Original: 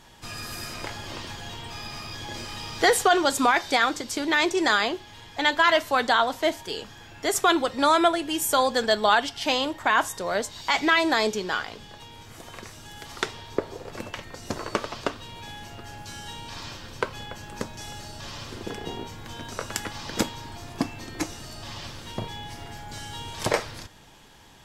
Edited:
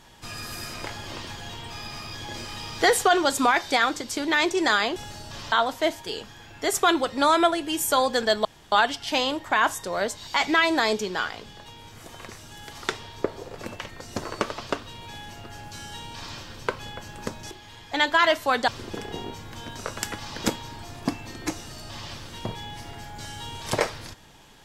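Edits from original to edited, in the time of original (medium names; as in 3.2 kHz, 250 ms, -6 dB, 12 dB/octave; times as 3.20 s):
4.96–6.13 s: swap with 17.85–18.41 s
9.06 s: insert room tone 0.27 s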